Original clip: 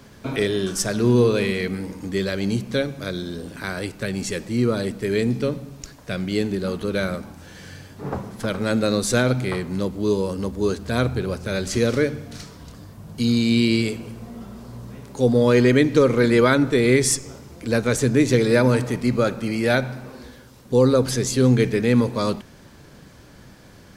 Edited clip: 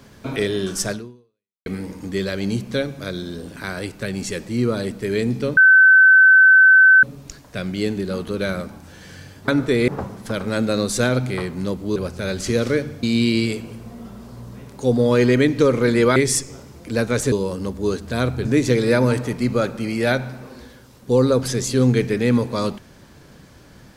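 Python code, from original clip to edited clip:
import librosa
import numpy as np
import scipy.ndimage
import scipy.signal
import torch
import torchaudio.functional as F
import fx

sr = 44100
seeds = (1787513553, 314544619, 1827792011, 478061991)

y = fx.edit(x, sr, fx.fade_out_span(start_s=0.92, length_s=0.74, curve='exp'),
    fx.insert_tone(at_s=5.57, length_s=1.46, hz=1530.0, db=-7.0),
    fx.move(start_s=10.1, length_s=1.13, to_s=18.08),
    fx.cut(start_s=12.3, length_s=1.09),
    fx.move(start_s=16.52, length_s=0.4, to_s=8.02), tone=tone)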